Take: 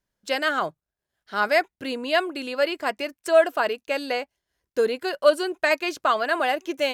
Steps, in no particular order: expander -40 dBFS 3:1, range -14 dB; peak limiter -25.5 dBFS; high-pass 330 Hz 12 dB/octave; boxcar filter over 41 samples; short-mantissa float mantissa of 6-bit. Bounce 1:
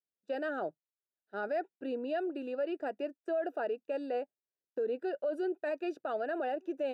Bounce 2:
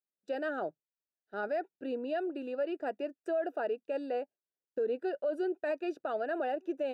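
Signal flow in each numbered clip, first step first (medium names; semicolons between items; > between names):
short-mantissa float > boxcar filter > expander > peak limiter > high-pass; short-mantissa float > high-pass > expander > boxcar filter > peak limiter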